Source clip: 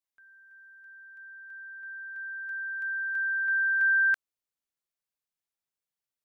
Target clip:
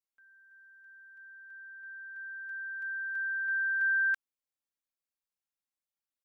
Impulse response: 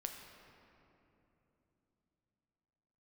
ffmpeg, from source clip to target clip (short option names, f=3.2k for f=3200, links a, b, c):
-af "aecho=1:1:3.7:0.73,volume=-7.5dB"